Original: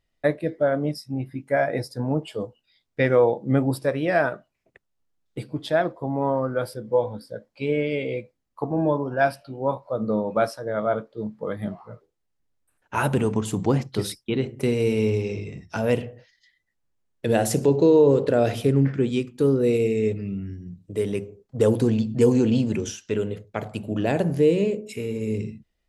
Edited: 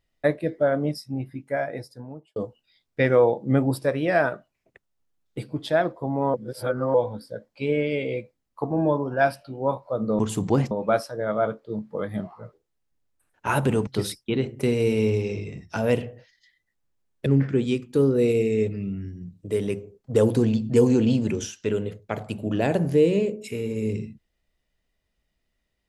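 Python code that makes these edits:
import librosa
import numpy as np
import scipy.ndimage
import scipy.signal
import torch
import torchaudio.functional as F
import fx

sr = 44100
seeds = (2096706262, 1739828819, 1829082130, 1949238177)

y = fx.edit(x, sr, fx.fade_out_span(start_s=0.99, length_s=1.37),
    fx.reverse_span(start_s=6.34, length_s=0.6),
    fx.move(start_s=13.35, length_s=0.52, to_s=10.19),
    fx.cut(start_s=17.26, length_s=1.45), tone=tone)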